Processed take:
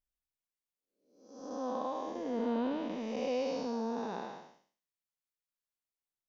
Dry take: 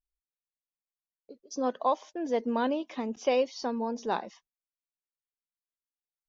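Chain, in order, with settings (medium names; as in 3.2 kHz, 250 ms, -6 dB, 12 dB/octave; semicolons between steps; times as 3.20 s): spectral blur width 377 ms; 1.39–3.67 s: bass shelf 75 Hz +10 dB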